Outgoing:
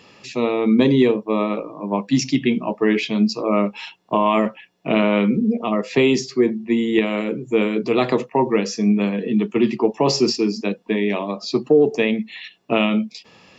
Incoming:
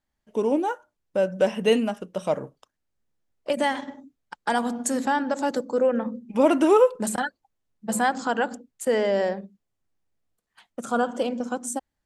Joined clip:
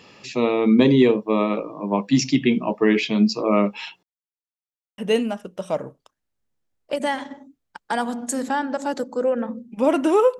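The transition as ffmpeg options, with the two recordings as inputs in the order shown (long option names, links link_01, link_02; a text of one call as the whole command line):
ffmpeg -i cue0.wav -i cue1.wav -filter_complex "[0:a]apad=whole_dur=10.39,atrim=end=10.39,asplit=2[link_01][link_02];[link_01]atrim=end=4.03,asetpts=PTS-STARTPTS,afade=type=out:start_time=4.026:duration=0.004:curve=hsin[link_03];[link_02]atrim=start=4.03:end=4.98,asetpts=PTS-STARTPTS,volume=0[link_04];[1:a]atrim=start=1.55:end=6.96,asetpts=PTS-STARTPTS,afade=type=in:duration=0.004:curve=hsin[link_05];[link_03][link_04][link_05]concat=n=3:v=0:a=1" out.wav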